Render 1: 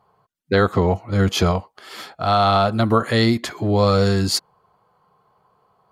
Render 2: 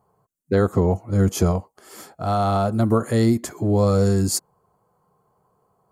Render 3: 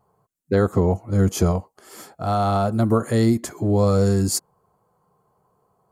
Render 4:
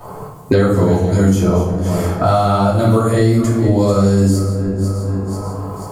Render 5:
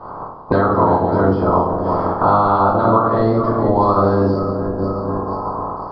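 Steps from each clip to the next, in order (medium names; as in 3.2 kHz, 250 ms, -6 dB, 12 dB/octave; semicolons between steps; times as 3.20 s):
FFT filter 360 Hz 0 dB, 3.8 kHz -15 dB, 7.2 kHz +4 dB
vibrato 0.5 Hz 9.4 cents
backward echo that repeats 245 ms, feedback 41%, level -13 dB; simulated room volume 160 m³, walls mixed, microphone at 2.7 m; three bands compressed up and down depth 100%; trim -4.5 dB
spectral peaks clipped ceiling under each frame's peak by 17 dB; resampled via 11.025 kHz; resonant high shelf 1.6 kHz -14 dB, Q 3; trim -3 dB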